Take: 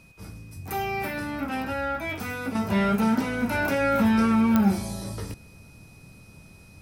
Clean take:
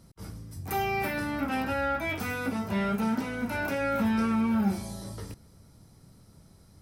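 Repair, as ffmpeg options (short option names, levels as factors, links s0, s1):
-af "adeclick=t=4,bandreject=f=2500:w=30,agate=range=0.0891:threshold=0.00794,asetnsamples=n=441:p=0,asendcmd='2.55 volume volume -5.5dB',volume=1"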